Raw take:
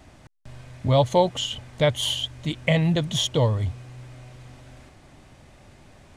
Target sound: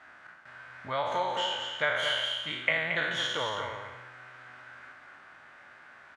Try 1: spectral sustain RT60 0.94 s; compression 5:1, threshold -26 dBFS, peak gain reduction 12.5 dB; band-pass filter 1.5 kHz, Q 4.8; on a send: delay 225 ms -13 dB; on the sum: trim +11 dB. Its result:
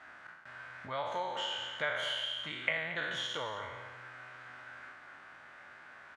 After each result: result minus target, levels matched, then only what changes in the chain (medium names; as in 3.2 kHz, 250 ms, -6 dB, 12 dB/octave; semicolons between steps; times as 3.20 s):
compression: peak gain reduction +6 dB; echo-to-direct -6.5 dB
change: compression 5:1, threshold -18.5 dBFS, peak gain reduction 6.5 dB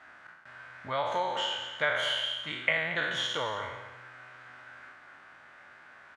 echo-to-direct -6.5 dB
change: delay 225 ms -6.5 dB